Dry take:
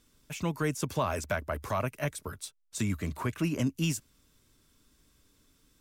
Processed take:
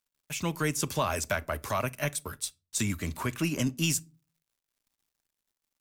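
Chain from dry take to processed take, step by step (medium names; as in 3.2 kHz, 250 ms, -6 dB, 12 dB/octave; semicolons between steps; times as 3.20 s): treble shelf 2.1 kHz +8.5 dB; crossover distortion -54.5 dBFS; on a send: reverberation RT60 0.35 s, pre-delay 3 ms, DRR 16.5 dB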